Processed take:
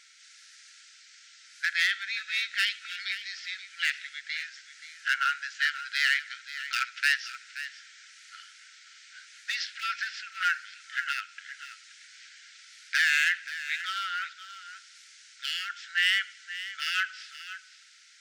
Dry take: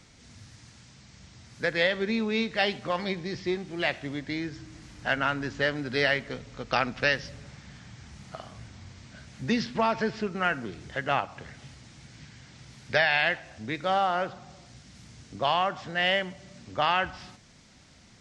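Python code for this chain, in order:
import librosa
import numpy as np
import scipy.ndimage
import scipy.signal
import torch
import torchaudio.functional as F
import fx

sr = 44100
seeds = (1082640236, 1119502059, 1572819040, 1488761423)

y = np.clip(x, -10.0 ** (-18.5 / 20.0), 10.0 ** (-18.5 / 20.0))
y = fx.brickwall_highpass(y, sr, low_hz=1300.0)
y = y + 10.0 ** (-13.0 / 20.0) * np.pad(y, (int(528 * sr / 1000.0), 0))[:len(y)]
y = y * 10.0 ** (3.0 / 20.0)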